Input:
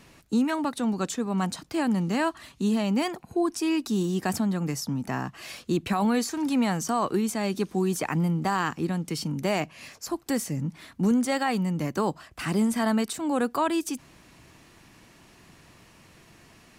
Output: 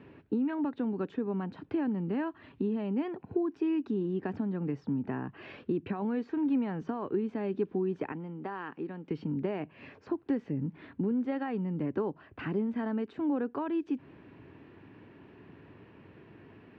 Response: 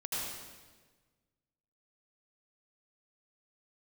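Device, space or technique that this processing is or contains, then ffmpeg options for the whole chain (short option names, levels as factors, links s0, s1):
bass amplifier: -filter_complex "[0:a]acompressor=threshold=0.02:ratio=3,highpass=86,equalizer=f=100:t=q:w=4:g=6,equalizer=f=280:t=q:w=4:g=6,equalizer=f=410:t=q:w=4:g=8,equalizer=f=700:t=q:w=4:g=-4,equalizer=f=1200:t=q:w=4:g=-6,equalizer=f=2100:t=q:w=4:g=-6,lowpass=f=2400:w=0.5412,lowpass=f=2400:w=1.3066,asettb=1/sr,asplit=3[s0][s1][s2];[s0]atrim=end=8.124[s3];[s1]atrim=start=8.12:end=9.11,asetpts=PTS-STARTPTS,afade=t=in:d=0.004:c=qsin,afade=t=out:st=0.986:d=0.004:c=qsin,highpass=f=470:p=1[s4];[s2]atrim=start=9.106[s5];[s3][s4]acrossfade=d=0.004:c1=hsin:c2=qsin[s6];[s6][s5]acrossfade=d=0.004:c1=qsin:c2=hsin"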